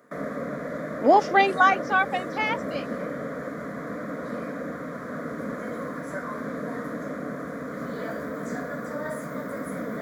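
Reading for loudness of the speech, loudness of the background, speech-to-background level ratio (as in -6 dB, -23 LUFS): -22.0 LUFS, -33.0 LUFS, 11.0 dB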